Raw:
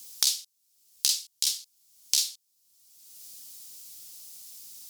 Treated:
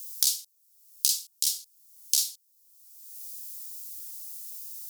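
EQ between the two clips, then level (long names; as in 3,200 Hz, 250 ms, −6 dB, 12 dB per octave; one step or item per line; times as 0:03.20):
RIAA equalisation recording
low-shelf EQ 110 Hz −10 dB
−10.5 dB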